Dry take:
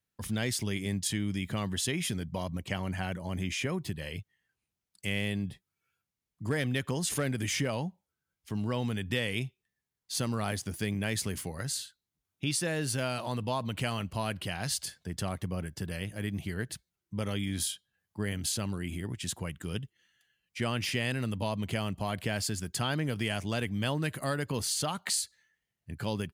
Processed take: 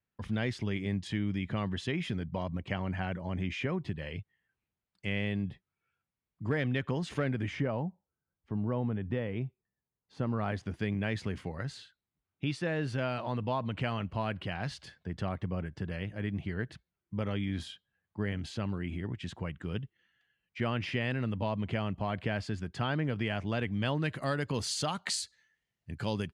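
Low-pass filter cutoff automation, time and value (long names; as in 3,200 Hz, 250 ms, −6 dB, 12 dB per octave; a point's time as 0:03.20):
0:07.21 2,600 Hz
0:07.88 1,100 Hz
0:10.12 1,100 Hz
0:10.65 2,500 Hz
0:23.48 2,500 Hz
0:24.71 6,500 Hz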